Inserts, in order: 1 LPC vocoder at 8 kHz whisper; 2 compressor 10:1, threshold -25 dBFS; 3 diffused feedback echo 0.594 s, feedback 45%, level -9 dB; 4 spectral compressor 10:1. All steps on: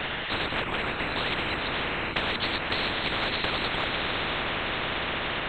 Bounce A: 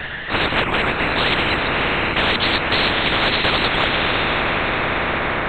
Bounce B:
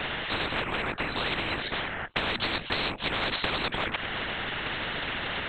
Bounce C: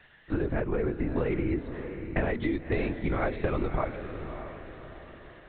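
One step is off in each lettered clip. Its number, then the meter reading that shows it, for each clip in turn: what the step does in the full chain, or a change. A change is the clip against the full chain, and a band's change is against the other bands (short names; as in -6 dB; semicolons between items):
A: 2, mean gain reduction 9.0 dB; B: 3, momentary loudness spread change +1 LU; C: 4, 4 kHz band -27.0 dB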